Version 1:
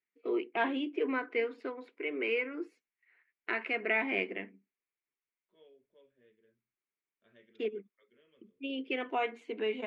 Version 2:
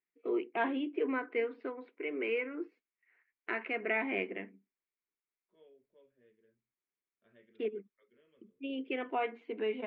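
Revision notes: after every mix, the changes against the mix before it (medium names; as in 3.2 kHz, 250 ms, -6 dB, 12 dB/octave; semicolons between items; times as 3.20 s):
master: add distance through air 300 m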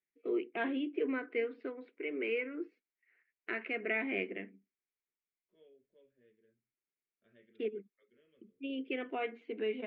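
master: add peaking EQ 930 Hz -10.5 dB 0.75 oct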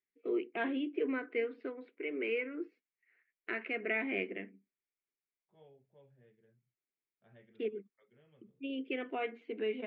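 second voice: remove static phaser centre 340 Hz, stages 4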